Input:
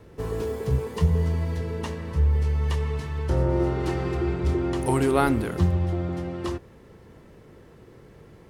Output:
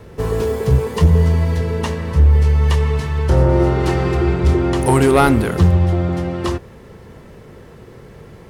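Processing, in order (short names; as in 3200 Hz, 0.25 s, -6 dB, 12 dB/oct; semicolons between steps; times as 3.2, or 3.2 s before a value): bell 310 Hz -5.5 dB 0.3 oct; in parallel at -4 dB: wavefolder -16 dBFS; on the sum: gain +6 dB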